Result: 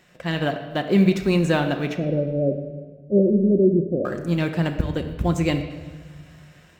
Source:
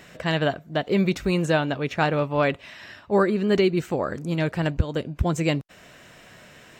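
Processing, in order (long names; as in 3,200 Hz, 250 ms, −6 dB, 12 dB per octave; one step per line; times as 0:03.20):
mu-law and A-law mismatch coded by A
0:01.96–0:04.05: Butterworth low-pass 640 Hz 96 dB per octave
dynamic equaliser 250 Hz, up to +7 dB, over −40 dBFS, Q 2.6
automatic gain control gain up to 4 dB
convolution reverb RT60 1.5 s, pre-delay 6 ms, DRR 5 dB
level −3.5 dB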